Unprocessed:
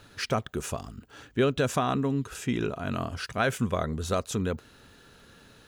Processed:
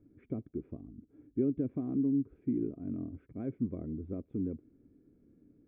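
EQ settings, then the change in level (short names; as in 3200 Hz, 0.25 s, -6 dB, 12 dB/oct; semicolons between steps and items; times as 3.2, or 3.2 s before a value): vocal tract filter u; high shelf 3000 Hz +9 dB; fixed phaser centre 2100 Hz, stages 4; +4.0 dB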